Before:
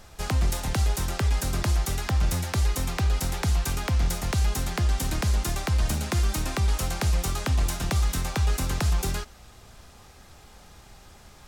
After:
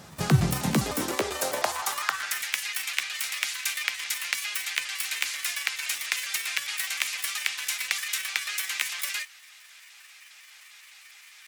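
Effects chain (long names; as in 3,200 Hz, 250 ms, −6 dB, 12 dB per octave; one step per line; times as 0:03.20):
pitch shifter gated in a rhythm +6.5 semitones, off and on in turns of 101 ms
high-pass filter sweep 150 Hz → 2,200 Hz, 0:00.53–0:02.50
level +3 dB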